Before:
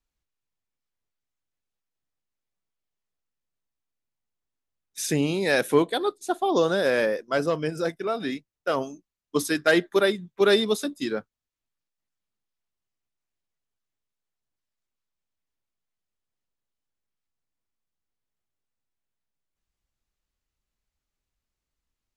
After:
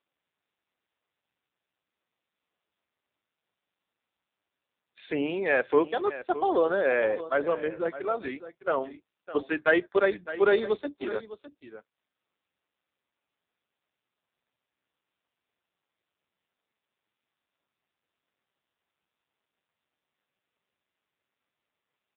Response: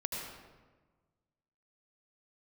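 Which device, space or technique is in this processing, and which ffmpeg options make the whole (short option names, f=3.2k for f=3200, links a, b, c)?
satellite phone: -af "highpass=350,lowpass=3.2k,aecho=1:1:608:0.2" -ar 8000 -c:a libopencore_amrnb -b:a 5900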